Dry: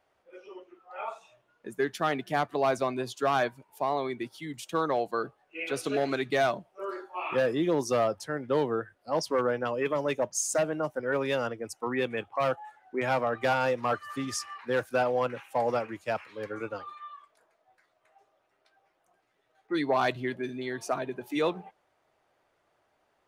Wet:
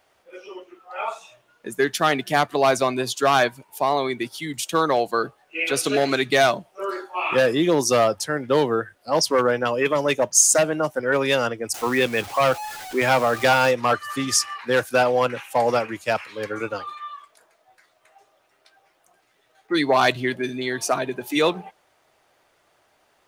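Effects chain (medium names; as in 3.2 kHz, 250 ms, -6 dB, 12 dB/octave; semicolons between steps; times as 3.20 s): 11.74–13.71 s: jump at every zero crossing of -41.5 dBFS; treble shelf 2.5 kHz +9 dB; trim +7 dB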